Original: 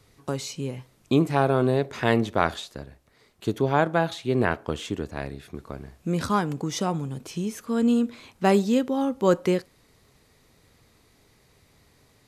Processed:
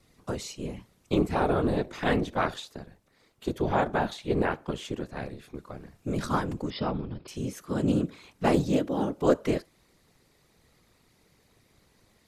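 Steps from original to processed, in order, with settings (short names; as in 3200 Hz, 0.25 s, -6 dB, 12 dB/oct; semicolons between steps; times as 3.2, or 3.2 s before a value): whisperiser; 6.7–7.28 brick-wall FIR low-pass 5300 Hz; Doppler distortion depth 0.15 ms; gain -4 dB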